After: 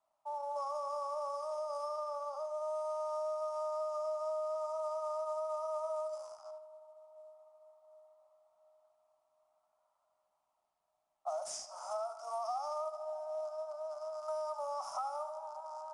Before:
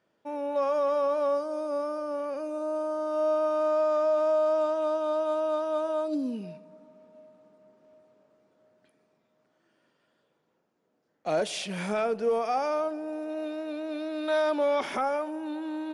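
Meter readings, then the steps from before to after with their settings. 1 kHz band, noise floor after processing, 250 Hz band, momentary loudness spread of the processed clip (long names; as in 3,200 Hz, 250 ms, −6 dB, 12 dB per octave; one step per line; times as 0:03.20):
−6.5 dB, −82 dBFS, below −40 dB, 8 LU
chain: loose part that buzzes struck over −41 dBFS, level −29 dBFS
low-pass that shuts in the quiet parts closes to 1,300 Hz, open at −25 dBFS
Butterworth high-pass 610 Hz 96 dB per octave
high-shelf EQ 6,700 Hz +6.5 dB
feedback echo with a band-pass in the loop 76 ms, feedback 49%, band-pass 1,900 Hz, level −8.5 dB
downward compressor 8 to 1, threshold −34 dBFS, peak gain reduction 11.5 dB
Chebyshev band-stop filter 1,300–5,000 Hz, order 5
IMA ADPCM 88 kbit/s 22,050 Hz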